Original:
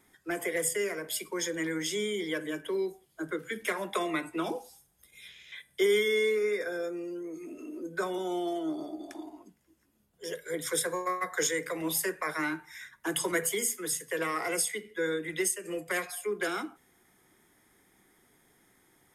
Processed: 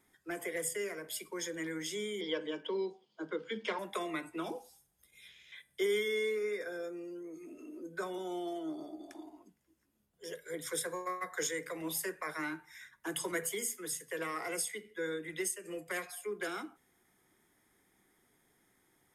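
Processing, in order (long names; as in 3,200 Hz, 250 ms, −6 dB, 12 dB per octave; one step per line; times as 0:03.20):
0:02.21–0:03.79: loudspeaker in its box 190–5,700 Hz, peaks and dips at 210 Hz +9 dB, 480 Hz +7 dB, 920 Hz +9 dB, 1,800 Hz −4 dB, 3,100 Hz +9 dB, 4,700 Hz +7 dB
level −6.5 dB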